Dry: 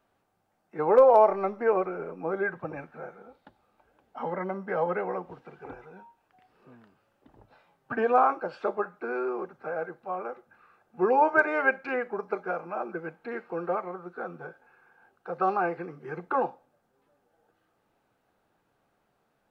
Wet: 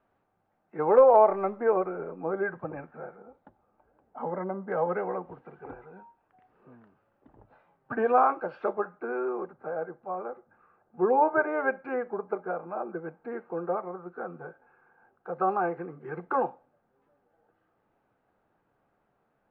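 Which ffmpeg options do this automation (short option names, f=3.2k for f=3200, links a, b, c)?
-af "asetnsamples=n=441:p=0,asendcmd='1.58 lowpass f 1600;3.16 lowpass f 1200;4.72 lowpass f 1700;8.05 lowpass f 2300;8.73 lowpass f 1600;9.53 lowpass f 1200;13.97 lowpass f 1500;16.01 lowpass f 2000',lowpass=2.1k"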